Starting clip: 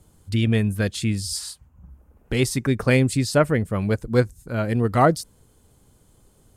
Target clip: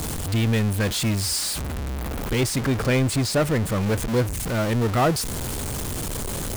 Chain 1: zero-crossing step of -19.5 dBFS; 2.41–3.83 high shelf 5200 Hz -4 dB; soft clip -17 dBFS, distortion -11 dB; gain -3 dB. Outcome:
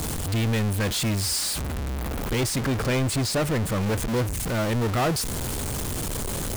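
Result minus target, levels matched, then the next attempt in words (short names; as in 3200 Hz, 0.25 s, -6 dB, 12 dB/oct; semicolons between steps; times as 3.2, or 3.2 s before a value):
soft clip: distortion +8 dB
zero-crossing step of -19.5 dBFS; 2.41–3.83 high shelf 5200 Hz -4 dB; soft clip -10 dBFS, distortion -18 dB; gain -3 dB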